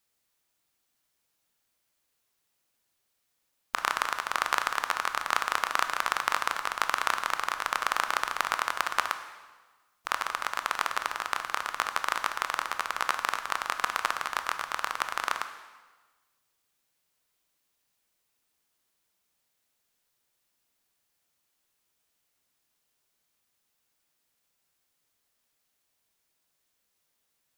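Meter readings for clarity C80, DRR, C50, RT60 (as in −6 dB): 11.5 dB, 8.0 dB, 10.0 dB, 1.3 s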